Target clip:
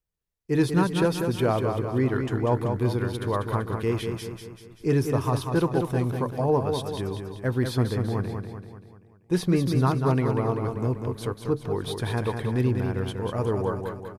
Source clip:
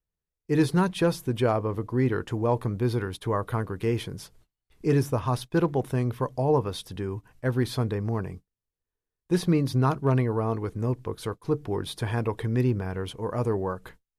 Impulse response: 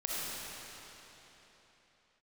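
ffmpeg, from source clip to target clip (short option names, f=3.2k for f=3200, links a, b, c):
-af "aecho=1:1:193|386|579|772|965|1158:0.501|0.256|0.13|0.0665|0.0339|0.0173"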